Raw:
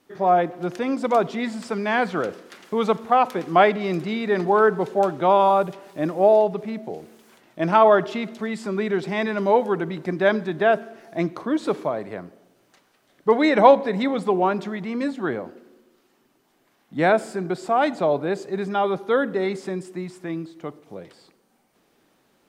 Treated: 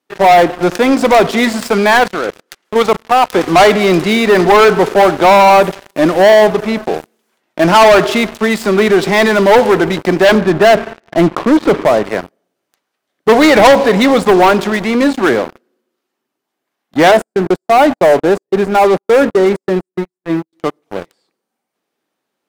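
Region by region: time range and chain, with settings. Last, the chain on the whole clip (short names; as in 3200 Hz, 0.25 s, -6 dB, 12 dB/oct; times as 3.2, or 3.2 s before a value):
1.97–3.33 low shelf 120 Hz -5.5 dB + level quantiser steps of 11 dB
10.35–12.04 LPF 2400 Hz + low shelf 140 Hz +11 dB
17.11–20.53 gate -30 dBFS, range -30 dB + bell 3800 Hz -12 dB 2.4 oct
whole clip: HPF 310 Hz 6 dB/oct; sample leveller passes 5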